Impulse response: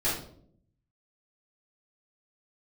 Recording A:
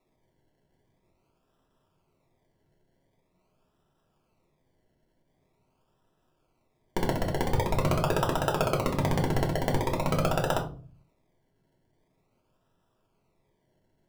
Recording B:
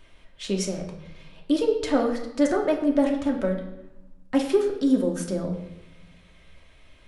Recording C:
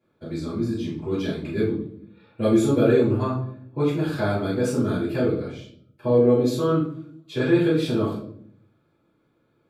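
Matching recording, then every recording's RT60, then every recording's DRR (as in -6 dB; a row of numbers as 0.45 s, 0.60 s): C; 0.40 s, 0.90 s, 0.60 s; -1.0 dB, 0.5 dB, -11.5 dB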